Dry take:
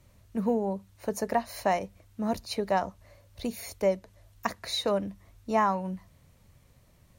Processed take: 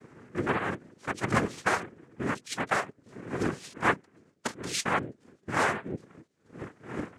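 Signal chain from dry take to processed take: gliding pitch shift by +5.5 st ending unshifted; wind noise 330 Hz -37 dBFS; reverb removal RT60 0.69 s; gate -56 dBFS, range -9 dB; noise vocoder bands 3

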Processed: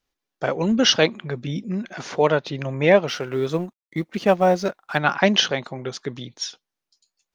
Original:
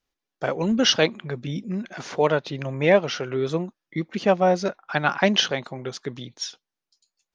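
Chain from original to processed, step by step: 3.08–4.98 G.711 law mismatch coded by A; gain +2 dB

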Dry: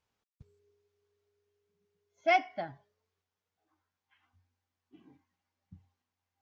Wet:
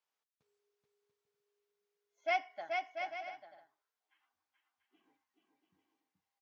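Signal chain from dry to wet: HPF 560 Hz 12 dB/oct; on a send: bouncing-ball echo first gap 0.43 s, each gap 0.6×, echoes 5; on the sum: gain -6 dB

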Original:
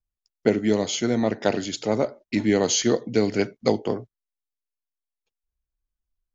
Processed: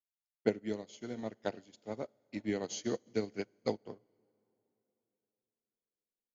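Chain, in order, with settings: reverb RT60 4.0 s, pre-delay 28 ms, DRR 13 dB; upward expander 2.5:1, over -33 dBFS; gain -8.5 dB

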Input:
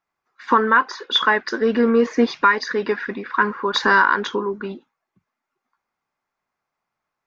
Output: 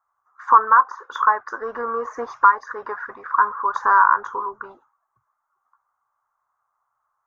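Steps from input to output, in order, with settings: EQ curve 130 Hz 0 dB, 190 Hz -23 dB, 1200 Hz +11 dB, 2500 Hz -24 dB, 4500 Hz -25 dB, 6400 Hz -8 dB; mismatched tape noise reduction encoder only; gain -4 dB

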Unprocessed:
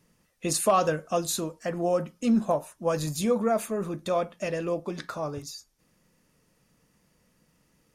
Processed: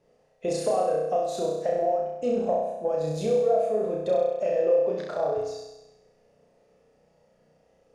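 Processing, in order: band shelf 570 Hz +15 dB 1.2 oct; compressor 6:1, threshold -19 dBFS, peak gain reduction 15 dB; air absorption 76 m; flutter echo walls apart 5.6 m, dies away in 1 s; gain -6 dB

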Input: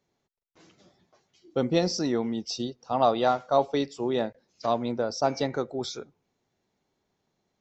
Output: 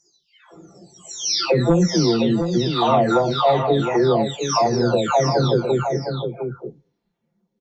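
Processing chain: spectral delay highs early, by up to 0.899 s; dynamic EQ 150 Hz, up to +8 dB, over -46 dBFS, Q 0.77; in parallel at -4.5 dB: sine folder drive 6 dB, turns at -7.5 dBFS; on the sum: compressor 2.5:1, threshold -24 dBFS, peak gain reduction 10 dB; spectral noise reduction 16 dB; echo 0.712 s -7 dB; gain +6.5 dB

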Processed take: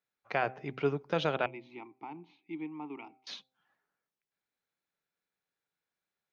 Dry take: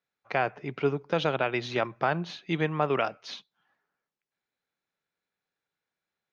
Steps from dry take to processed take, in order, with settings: 1.46–3.27 vowel filter u; de-hum 129.8 Hz, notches 6; gain -3.5 dB

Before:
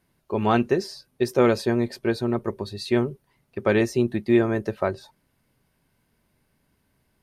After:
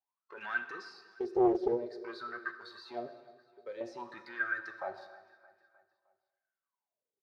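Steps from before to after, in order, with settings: 3.07–3.81 pre-emphasis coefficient 0.8; spectral noise reduction 16 dB; bell 4500 Hz +12.5 dB 1.2 oct; sample leveller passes 2; negative-ratio compressor -19 dBFS, ratio -1; limiter -18 dBFS, peak gain reduction 11.5 dB; wah 0.51 Hz 370–1600 Hz, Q 15; feedback echo 0.309 s, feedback 55%, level -21 dB; plate-style reverb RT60 1.2 s, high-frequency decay 1×, DRR 8.5 dB; Doppler distortion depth 0.38 ms; gain +8 dB

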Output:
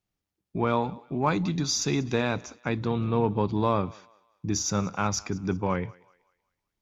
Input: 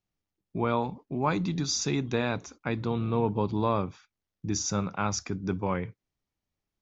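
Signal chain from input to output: added harmonics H 6 -44 dB, 8 -36 dB, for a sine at -12.5 dBFS; thinning echo 0.189 s, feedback 40%, high-pass 520 Hz, level -22 dB; gain +2 dB

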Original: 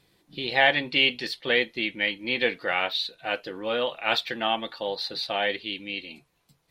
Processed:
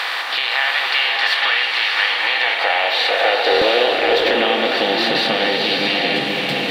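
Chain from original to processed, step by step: per-bin compression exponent 0.4; compressor, threshold -27 dBFS, peak gain reduction 14.5 dB; in parallel at +1 dB: limiter -21.5 dBFS, peak gain reduction 9 dB; on the sum: high-pass sweep 1100 Hz -> 170 Hz, 1.99–5.12; stuck buffer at 3.5, samples 1024, times 4; bloom reverb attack 0.7 s, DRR 0.5 dB; gain +4.5 dB

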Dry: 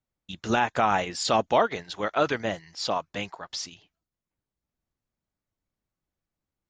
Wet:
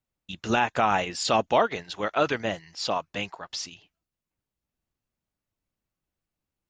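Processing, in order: bell 2700 Hz +4.5 dB 0.23 oct

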